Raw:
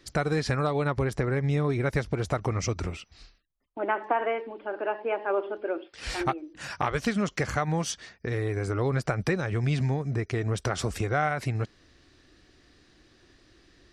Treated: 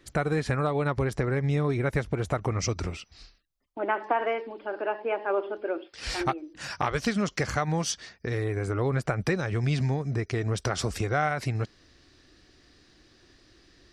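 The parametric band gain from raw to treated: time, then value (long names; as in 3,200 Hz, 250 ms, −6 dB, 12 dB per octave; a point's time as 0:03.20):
parametric band 5,000 Hz 0.67 octaves
−8.5 dB
from 0:00.85 0 dB
from 0:01.80 −6 dB
from 0:02.59 +4 dB
from 0:03.94 +10.5 dB
from 0:04.82 +4.5 dB
from 0:08.44 −5 dB
from 0:09.27 +4 dB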